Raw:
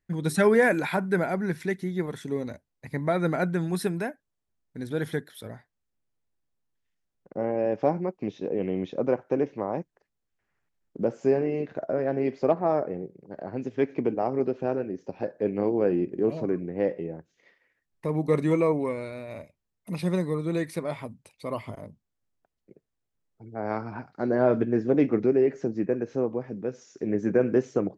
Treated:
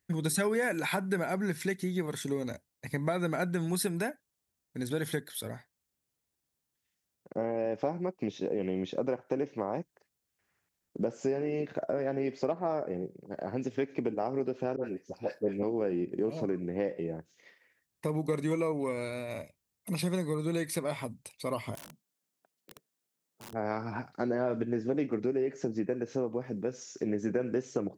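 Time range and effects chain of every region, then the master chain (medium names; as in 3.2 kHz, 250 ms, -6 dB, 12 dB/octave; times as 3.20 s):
14.76–15.63 s: peaking EQ 11 kHz +9 dB 0.52 oct + phase dispersion highs, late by 74 ms, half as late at 910 Hz + three bands expanded up and down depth 100%
21.75–23.53 s: high-pass 160 Hz 24 dB/octave + compression 20:1, threshold -45 dBFS + integer overflow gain 45 dB
whole clip: high-pass 54 Hz; treble shelf 3.9 kHz +11 dB; compression 4:1, threshold -28 dBFS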